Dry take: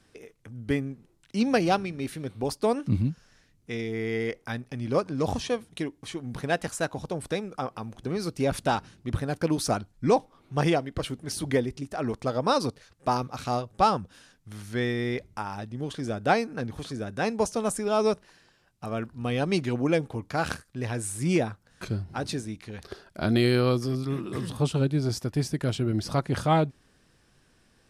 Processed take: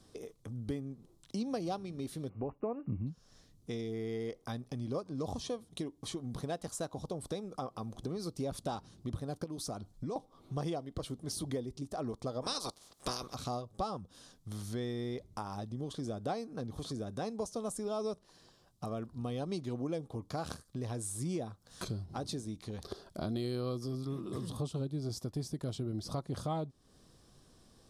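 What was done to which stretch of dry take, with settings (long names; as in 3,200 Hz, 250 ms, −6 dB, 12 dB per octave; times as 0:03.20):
0:02.29–0:03.07: linear-phase brick-wall low-pass 2,900 Hz
0:09.44–0:10.16: downward compressor 2 to 1, threshold −38 dBFS
0:12.41–0:13.33: ceiling on every frequency bin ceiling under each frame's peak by 25 dB
0:21.01–0:22.06: one half of a high-frequency compander encoder only
whole clip: flat-topped bell 2,000 Hz −10.5 dB 1.2 octaves; notch filter 890 Hz, Q 12; downward compressor 3 to 1, threshold −40 dBFS; level +1.5 dB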